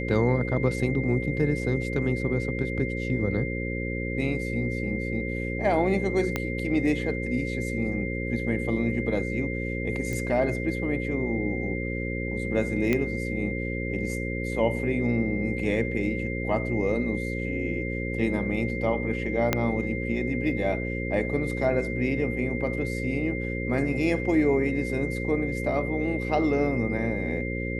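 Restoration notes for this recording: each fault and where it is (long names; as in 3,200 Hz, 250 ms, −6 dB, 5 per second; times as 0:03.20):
mains buzz 60 Hz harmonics 9 −31 dBFS
whistle 2,100 Hz −34 dBFS
0:06.36: click −12 dBFS
0:10.13: click
0:12.93: click −12 dBFS
0:19.53: click −7 dBFS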